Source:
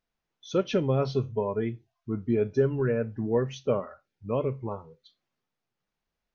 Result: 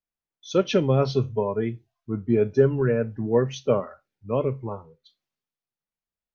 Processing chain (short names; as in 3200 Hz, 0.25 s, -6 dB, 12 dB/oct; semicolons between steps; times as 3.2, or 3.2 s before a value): three-band expander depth 40%; gain +4 dB